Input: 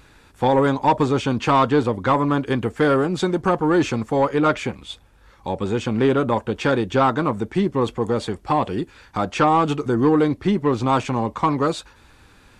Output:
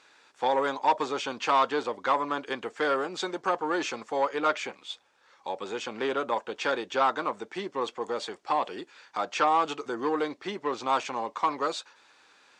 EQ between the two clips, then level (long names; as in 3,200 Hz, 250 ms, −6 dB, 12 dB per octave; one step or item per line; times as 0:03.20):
high-pass filter 530 Hz 12 dB per octave
high-frequency loss of the air 87 metres
parametric band 6,500 Hz +8 dB 1.5 octaves
−5.0 dB